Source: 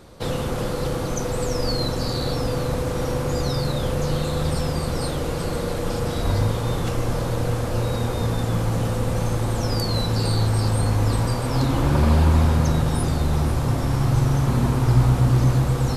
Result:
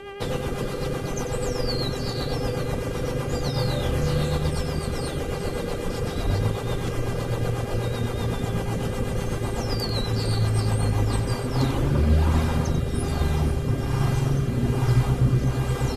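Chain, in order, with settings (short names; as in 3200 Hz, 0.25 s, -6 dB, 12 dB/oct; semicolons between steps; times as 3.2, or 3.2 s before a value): reverb removal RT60 0.67 s; buzz 400 Hz, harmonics 8, -36 dBFS -5 dB/oct; rotary speaker horn 8 Hz, later 1.2 Hz, at 10.8; 3.53–4.37 doubler 26 ms -2 dB; on a send: echo 93 ms -10.5 dB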